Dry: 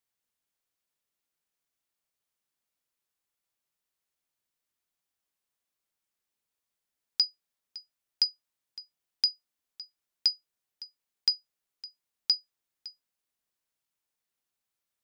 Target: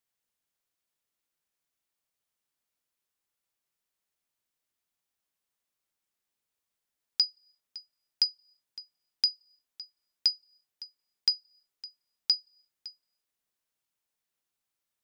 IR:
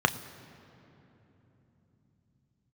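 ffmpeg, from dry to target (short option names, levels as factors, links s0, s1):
-filter_complex "[0:a]asplit=2[s0][s1];[s1]asuperpass=centerf=4800:order=4:qfactor=4.7[s2];[1:a]atrim=start_sample=2205,afade=t=out:st=0.41:d=0.01,atrim=end_sample=18522[s3];[s2][s3]afir=irnorm=-1:irlink=0,volume=0.0376[s4];[s0][s4]amix=inputs=2:normalize=0"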